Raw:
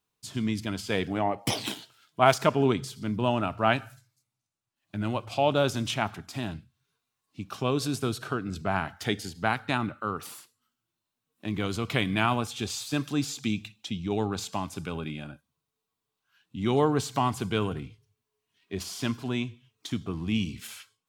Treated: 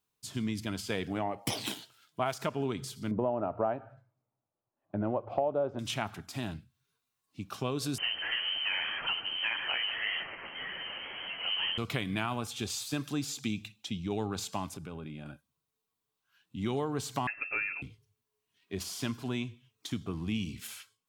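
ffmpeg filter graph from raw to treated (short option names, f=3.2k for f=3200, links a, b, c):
-filter_complex "[0:a]asettb=1/sr,asplit=3[a][b][c];[a]atrim=end=3.114[d];[b]atrim=start=3.11:end=5.79,asetpts=PTS-STARTPTS,afade=t=in:d=0.004:c=qsin,afade=t=out:st=2.676:d=0.004:c=qsin,lowpass=1.2k,equalizer=f=560:w=0.76:g=13.5[e];[c]atrim=start=5.786[f];[d][e]acrossfade=d=0.004:c1=hsin:c2=qsin[g];[g][f]acrossfade=d=0.004:c1=qsin:c2=hsin,asettb=1/sr,asplit=3[h][i][j];[h]atrim=end=7.984[k];[i]atrim=start=7.98:end=11.78,asetpts=PTS-STARTPTS,afade=t=in:d=0.004:c=qsin,afade=t=out:st=3.796:d=0.004:c=qsin,aeval=exprs='val(0)+0.5*0.0668*sgn(val(0))':c=same,lowpass=f=2.7k:t=q:w=0.5098,lowpass=f=2.7k:t=q:w=0.6013,lowpass=f=2.7k:t=q:w=0.9,lowpass=f=2.7k:t=q:w=2.563,afreqshift=-3200,flanger=delay=5:depth=8:regen=-27:speed=1.8:shape=triangular[l];[j]atrim=start=11.776[m];[k][l]acrossfade=d=0.004:c1=hsin:c2=qsin[n];[n][m]acrossfade=d=0.004:c1=qsin:c2=hsin,asettb=1/sr,asplit=3[o][p][q];[o]atrim=end=14.744[r];[p]atrim=start=14.74:end=15.26,asetpts=PTS-STARTPTS,afade=t=in:d=0.004:c=qsin,afade=t=out:st=0.516:d=0.004:c=qsin,tiltshelf=f=1.5k:g=4,acompressor=threshold=-39dB:ratio=2.5:attack=3.2:release=140:knee=1:detection=peak[s];[q]atrim=start=15.256[t];[r][s]acrossfade=d=0.004:c1=hsin:c2=qsin[u];[u][t]acrossfade=d=0.004:c1=qsin:c2=hsin,asettb=1/sr,asplit=3[v][w][x];[v]atrim=end=17.274[y];[w]atrim=start=17.27:end=17.82,asetpts=PTS-STARTPTS,afade=t=in:d=0.004:c=qsin,afade=t=out:st=0.546:d=0.004:c=qsin,lowshelf=f=150:g=-10,lowpass=f=2.4k:t=q:w=0.5098,lowpass=f=2.4k:t=q:w=0.6013,lowpass=f=2.4k:t=q:w=0.9,lowpass=f=2.4k:t=q:w=2.563,afreqshift=-2800,aecho=1:1:7.1:0.43,atrim=end_sample=24255[z];[x]atrim=start=17.816[aa];[y][z]acrossfade=d=0.004:c1=hsin:c2=qsin[ab];[ab][aa]acrossfade=d=0.004:c1=qsin:c2=hsin,highshelf=f=9.1k:g=4.5,acompressor=threshold=-25dB:ratio=6,volume=-3dB"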